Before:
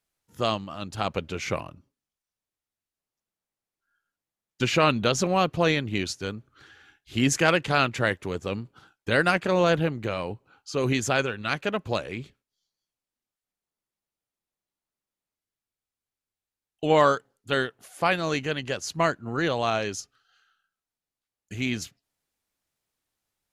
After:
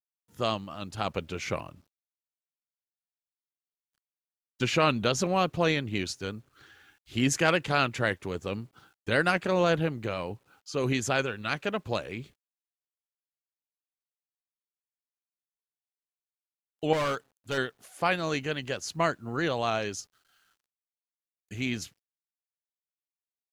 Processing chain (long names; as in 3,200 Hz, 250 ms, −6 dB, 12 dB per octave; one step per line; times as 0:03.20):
0:16.93–0:17.58: hard clipping −23 dBFS, distortion −14 dB
pitch vibrato 8.1 Hz 19 cents
bit reduction 11 bits
level −3 dB